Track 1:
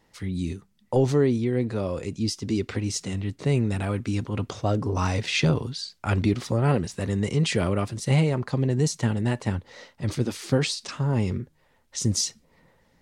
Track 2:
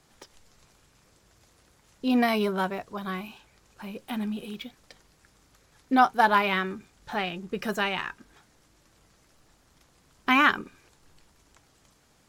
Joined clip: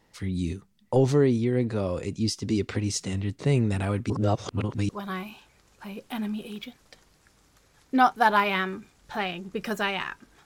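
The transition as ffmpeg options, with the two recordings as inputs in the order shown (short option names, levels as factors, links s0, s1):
-filter_complex "[0:a]apad=whole_dur=10.45,atrim=end=10.45,asplit=2[s0][s1];[s0]atrim=end=4.102[s2];[s1]atrim=start=4.098:end=4.892,asetpts=PTS-STARTPTS,areverse[s3];[1:a]atrim=start=2.868:end=8.43[s4];[s2][s3]acrossfade=d=0.004:c1=hsin:c2=hsin[s5];[s5][s4]acrossfade=d=0.004:c1=hsin:c2=hsin"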